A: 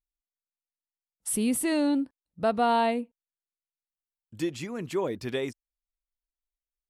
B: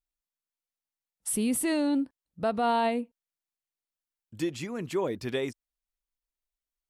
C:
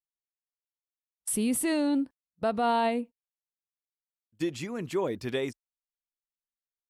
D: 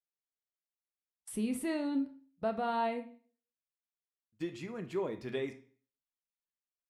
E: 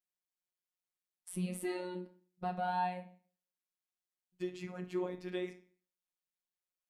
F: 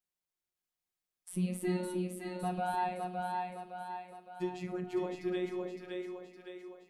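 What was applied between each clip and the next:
brickwall limiter −19.5 dBFS, peak gain reduction 4 dB
noise gate −40 dBFS, range −21 dB
high-shelf EQ 5,300 Hz −11 dB; on a send at −5.5 dB: convolution reverb RT60 0.45 s, pre-delay 3 ms; on the sum: level −7 dB
phases set to zero 181 Hz
low-shelf EQ 350 Hz +5 dB; echo with a time of its own for lows and highs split 390 Hz, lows 306 ms, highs 562 ms, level −3 dB

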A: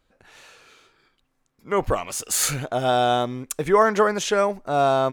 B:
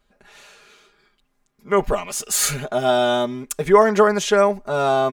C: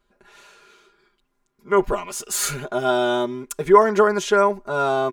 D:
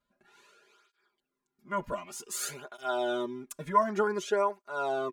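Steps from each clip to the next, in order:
comb filter 4.9 ms, depth 82%
hollow resonant body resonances 360/1,000/1,400 Hz, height 9 dB; level −4 dB
through-zero flanger with one copy inverted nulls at 0.54 Hz, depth 2.7 ms; level −8.5 dB

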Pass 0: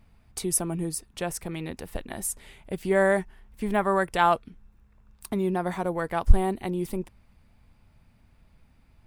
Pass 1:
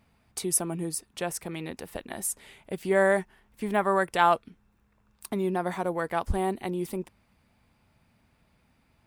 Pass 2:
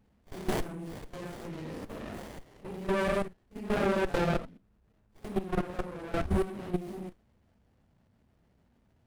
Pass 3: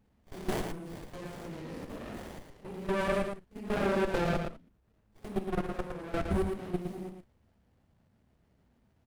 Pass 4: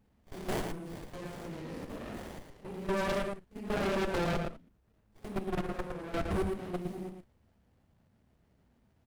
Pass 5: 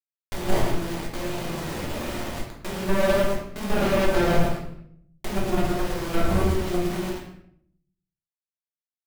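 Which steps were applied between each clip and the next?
high-pass filter 190 Hz 6 dB per octave
random phases in long frames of 200 ms; output level in coarse steps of 14 dB; windowed peak hold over 33 samples; level +3.5 dB
single-tap delay 113 ms −6 dB; level −2 dB
wave folding −25.5 dBFS
bit reduction 7 bits; rectangular room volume 99 cubic metres, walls mixed, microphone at 1.1 metres; one half of a high-frequency compander encoder only; level +4 dB

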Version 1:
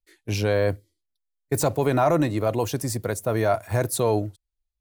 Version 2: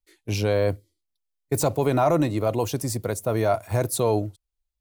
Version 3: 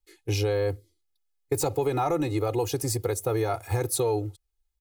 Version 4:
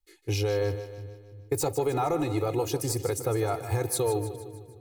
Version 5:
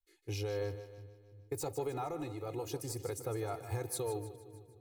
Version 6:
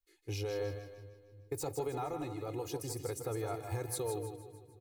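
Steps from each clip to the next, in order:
parametric band 1,700 Hz −5.5 dB 0.43 octaves
comb filter 2.4 ms, depth 87%; downward compressor 4 to 1, threshold −23 dBFS, peak gain reduction 8.5 dB
echo with a time of its own for lows and highs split 300 Hz, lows 344 ms, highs 153 ms, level −11.5 dB; level −1.5 dB
amplitude modulation by smooth noise, depth 55%; level −9 dB
repeating echo 161 ms, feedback 29%, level −10 dB

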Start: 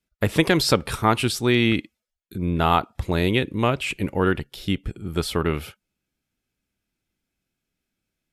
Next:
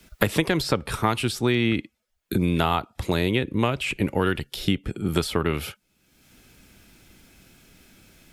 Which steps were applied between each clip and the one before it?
multiband upward and downward compressor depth 100%
level −2.5 dB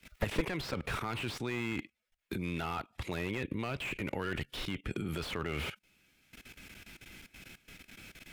output level in coarse steps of 18 dB
parametric band 2,300 Hz +9.5 dB 1.3 octaves
slew-rate limiting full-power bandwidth 35 Hz

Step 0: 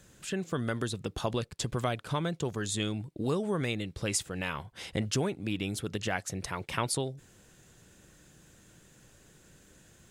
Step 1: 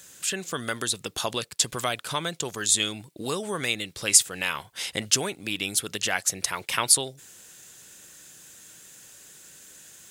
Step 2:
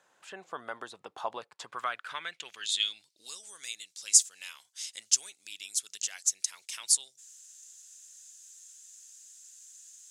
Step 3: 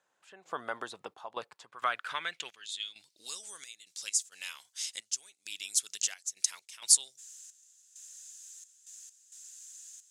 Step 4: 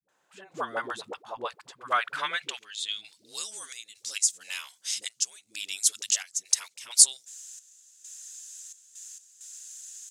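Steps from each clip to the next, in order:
spectral tilt +3.5 dB per octave; level +4.5 dB
band-pass filter sweep 860 Hz → 6,600 Hz, 0:01.48–0:03.39
gate pattern "..xxx.x.xxx" 66 BPM −12 dB; level +2.5 dB
all-pass dispersion highs, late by 88 ms, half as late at 350 Hz; level +5.5 dB

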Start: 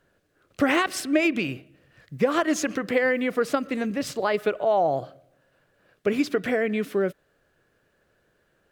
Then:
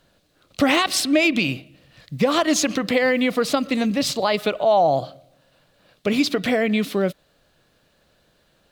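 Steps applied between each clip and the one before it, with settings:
graphic EQ with 15 bands 100 Hz −4 dB, 400 Hz −8 dB, 1,600 Hz −8 dB, 4,000 Hz +8 dB
in parallel at +0.5 dB: brickwall limiter −19.5 dBFS, peak gain reduction 7.5 dB
on the sum: level +2 dB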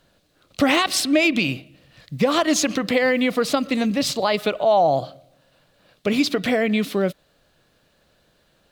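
no processing that can be heard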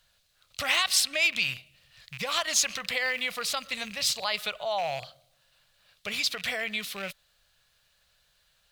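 loose part that buzzes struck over −30 dBFS, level −24 dBFS
guitar amp tone stack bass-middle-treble 10-0-10

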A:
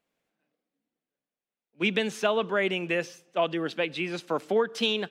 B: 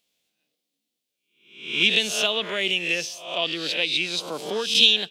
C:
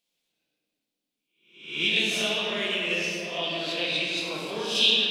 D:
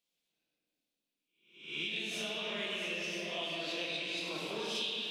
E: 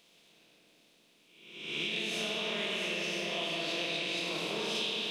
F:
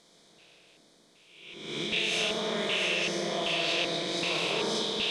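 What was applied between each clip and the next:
peak hold with a rise ahead of every peak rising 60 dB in 0.57 s; high shelf with overshoot 2,300 Hz +13.5 dB, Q 1.5; level −4 dB
convolution reverb RT60 3.0 s, pre-delay 6 ms, DRR −5 dB; level −8.5 dB
downward compressor, threshold −29 dBFS, peak gain reduction 12.5 dB; echo with a time of its own for lows and highs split 2,000 Hz, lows 174 ms, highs 669 ms, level −8 dB; level −6 dB
compressor on every frequency bin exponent 0.6; low-shelf EQ 110 Hz +5 dB
low-pass filter 10,000 Hz 24 dB per octave; auto-filter notch square 1.3 Hz 250–2,700 Hz; level +6.5 dB

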